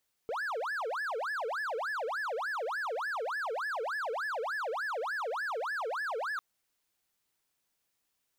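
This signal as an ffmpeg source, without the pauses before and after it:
ffmpeg -f lavfi -i "aevalsrc='0.0316*(1-4*abs(mod((1088*t-652/(2*PI*3.4)*sin(2*PI*3.4*t))+0.25,1)-0.5))':duration=6.1:sample_rate=44100" out.wav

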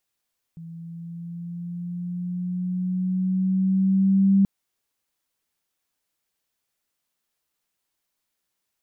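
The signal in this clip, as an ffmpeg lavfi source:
ffmpeg -f lavfi -i "aevalsrc='pow(10,(-13.5+22.5*(t/3.88-1))/20)*sin(2*PI*165*3.88/(3*log(2)/12)*(exp(3*log(2)/12*t/3.88)-1))':duration=3.88:sample_rate=44100" out.wav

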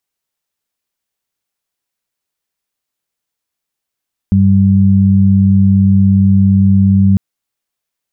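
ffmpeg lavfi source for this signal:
ffmpeg -f lavfi -i "aevalsrc='0.355*sin(2*PI*97.3*t)+0.398*sin(2*PI*194.6*t)':duration=2.85:sample_rate=44100" out.wav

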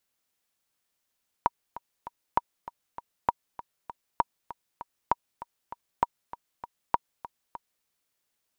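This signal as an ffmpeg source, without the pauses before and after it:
ffmpeg -f lavfi -i "aevalsrc='pow(10,(-8-16.5*gte(mod(t,3*60/197),60/197))/20)*sin(2*PI*950*mod(t,60/197))*exp(-6.91*mod(t,60/197)/0.03)':duration=6.39:sample_rate=44100" out.wav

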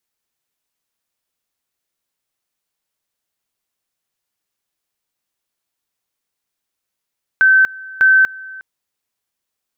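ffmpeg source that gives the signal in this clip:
ffmpeg -f lavfi -i "aevalsrc='pow(10,(-7-22.5*gte(mod(t,0.6),0.24))/20)*sin(2*PI*1540*t)':duration=1.2:sample_rate=44100" out.wav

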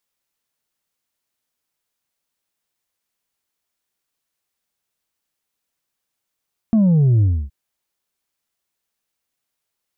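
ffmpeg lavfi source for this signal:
ffmpeg -f lavfi -i "aevalsrc='0.266*clip((0.77-t)/0.28,0,1)*tanh(1.41*sin(2*PI*230*0.77/log(65/230)*(exp(log(65/230)*t/0.77)-1)))/tanh(1.41)':duration=0.77:sample_rate=44100" out.wav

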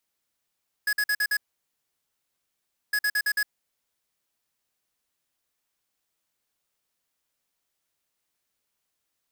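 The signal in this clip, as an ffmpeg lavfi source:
ffmpeg -f lavfi -i "aevalsrc='0.0631*(2*lt(mod(1680*t,1),0.5)-1)*clip(min(mod(mod(t,2.06),0.11),0.06-mod(mod(t,2.06),0.11))/0.005,0,1)*lt(mod(t,2.06),0.55)':duration=4.12:sample_rate=44100" out.wav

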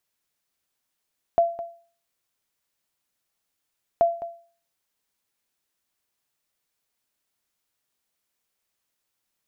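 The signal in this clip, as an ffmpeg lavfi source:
ffmpeg -f lavfi -i "aevalsrc='0.266*(sin(2*PI*680*mod(t,2.63))*exp(-6.91*mod(t,2.63)/0.43)+0.178*sin(2*PI*680*max(mod(t,2.63)-0.21,0))*exp(-6.91*max(mod(t,2.63)-0.21,0)/0.43))':duration=5.26:sample_rate=44100" out.wav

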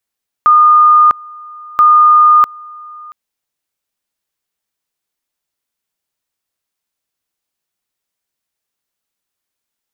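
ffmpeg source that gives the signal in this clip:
ffmpeg -f lavfi -i "aevalsrc='pow(10,(-3.5-25.5*gte(mod(t,1.33),0.65))/20)*sin(2*PI*1220*t)':duration=2.66:sample_rate=44100" out.wav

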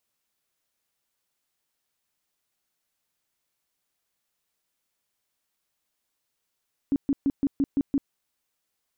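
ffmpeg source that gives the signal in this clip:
ffmpeg -f lavfi -i "aevalsrc='0.112*sin(2*PI*278*mod(t,0.17))*lt(mod(t,0.17),11/278)':duration=1.19:sample_rate=44100" out.wav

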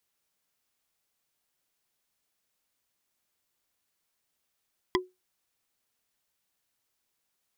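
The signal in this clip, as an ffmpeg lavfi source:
ffmpeg -f lavfi -i "aevalsrc='0.1*pow(10,-3*t/0.21)*sin(2*PI*367*t)+0.0944*pow(10,-3*t/0.062)*sin(2*PI*1011.8*t)+0.0891*pow(10,-3*t/0.028)*sin(2*PI*1983.3*t)+0.0841*pow(10,-3*t/0.015)*sin(2*PI*3278.4*t)+0.0794*pow(10,-3*t/0.009)*sin(2*PI*4895.8*t)':duration=0.45:sample_rate=44100" out.wav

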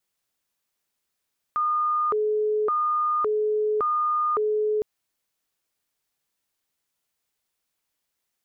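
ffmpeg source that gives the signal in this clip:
ffmpeg -f lavfi -i "aevalsrc='0.0944*sin(2*PI*(823*t+397/0.89*(0.5-abs(mod(0.89*t,1)-0.5))))':duration=3.26:sample_rate=44100" out.wav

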